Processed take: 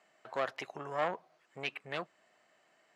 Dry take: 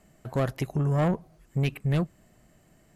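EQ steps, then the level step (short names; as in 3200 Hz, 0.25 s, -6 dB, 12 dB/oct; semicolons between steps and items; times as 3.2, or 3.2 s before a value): BPF 740–4300 Hz; 0.0 dB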